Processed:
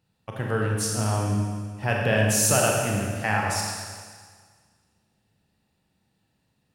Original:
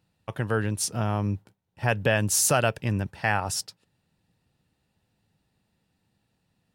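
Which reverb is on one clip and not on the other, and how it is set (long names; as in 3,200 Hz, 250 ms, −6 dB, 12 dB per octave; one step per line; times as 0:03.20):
four-comb reverb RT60 1.7 s, combs from 29 ms, DRR −1.5 dB
level −2 dB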